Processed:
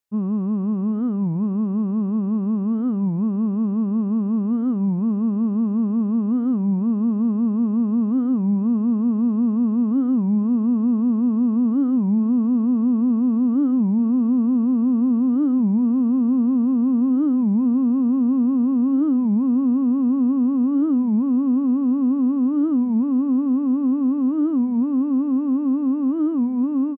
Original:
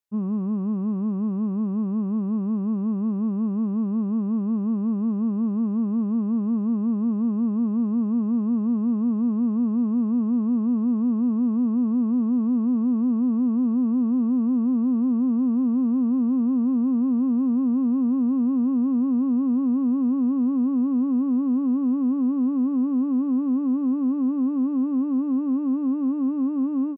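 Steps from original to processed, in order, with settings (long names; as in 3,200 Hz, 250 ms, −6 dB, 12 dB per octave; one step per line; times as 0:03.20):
single-tap delay 475 ms −20.5 dB
wow of a warped record 33 1/3 rpm, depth 250 cents
level +3 dB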